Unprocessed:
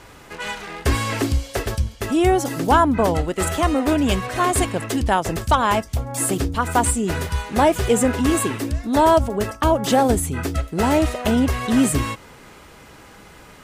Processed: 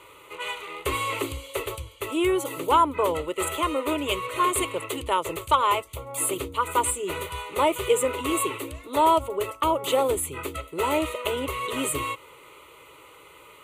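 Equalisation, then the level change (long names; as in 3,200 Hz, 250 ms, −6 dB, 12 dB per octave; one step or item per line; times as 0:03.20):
high-pass filter 390 Hz 6 dB per octave
phaser with its sweep stopped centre 1,100 Hz, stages 8
0.0 dB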